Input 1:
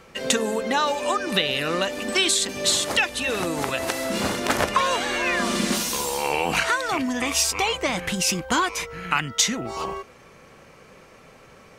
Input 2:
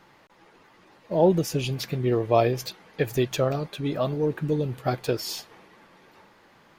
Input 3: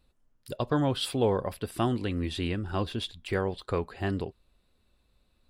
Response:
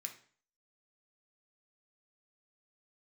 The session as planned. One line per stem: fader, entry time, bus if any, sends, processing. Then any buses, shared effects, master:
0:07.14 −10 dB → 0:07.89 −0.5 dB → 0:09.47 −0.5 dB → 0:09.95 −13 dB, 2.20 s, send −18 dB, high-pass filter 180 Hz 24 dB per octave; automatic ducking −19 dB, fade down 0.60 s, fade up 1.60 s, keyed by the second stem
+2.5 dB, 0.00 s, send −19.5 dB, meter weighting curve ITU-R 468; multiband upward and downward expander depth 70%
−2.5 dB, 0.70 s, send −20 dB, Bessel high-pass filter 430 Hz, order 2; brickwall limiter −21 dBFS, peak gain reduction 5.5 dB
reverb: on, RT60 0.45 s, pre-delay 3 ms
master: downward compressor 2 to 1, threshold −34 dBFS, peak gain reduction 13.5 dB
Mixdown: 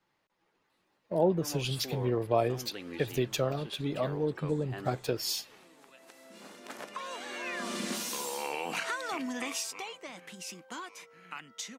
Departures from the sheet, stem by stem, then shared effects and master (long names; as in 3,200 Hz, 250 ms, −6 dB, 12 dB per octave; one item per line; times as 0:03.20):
stem 1 −10.0 dB → −17.0 dB
stem 2: missing meter weighting curve ITU-R 468
reverb return −7.5 dB